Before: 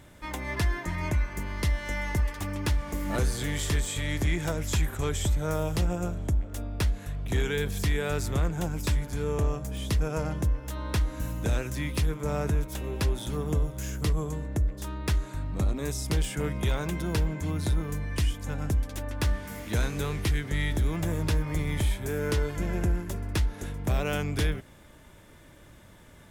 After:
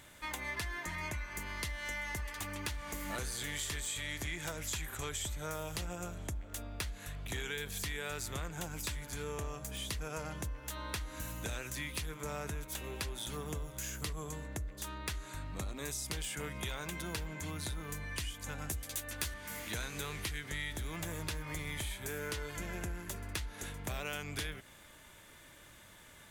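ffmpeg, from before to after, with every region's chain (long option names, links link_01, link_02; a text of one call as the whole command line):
ffmpeg -i in.wav -filter_complex "[0:a]asettb=1/sr,asplit=3[link_01][link_02][link_03];[link_01]atrim=end=18.694[link_04];[link_02]atrim=start=18.69:end=19.34,asetpts=PTS-STARTPTS,afade=type=in:duration=0.004:curve=qsin,afade=type=out:start_time=0.646:duration=0.004:curve=qsin,aemphasis=mode=production:type=cd,asplit=2[link_05][link_06];[link_06]adelay=13,volume=-3dB[link_07];[link_05][link_07]amix=inputs=2:normalize=0,atrim=end_sample=28665[link_08];[link_03]atrim=start=19.336[link_09];[link_04][link_08]acrossfade=duration=0.004:curve1=hsin:curve2=qsin[link_10];[link_10][link_09]acrossfade=duration=0.004:curve1=qsin:curve2=hsin,tiltshelf=frequency=840:gain=-6.5,bandreject=frequency=5300:width=16,acompressor=threshold=-34dB:ratio=3,volume=-3.5dB" out.wav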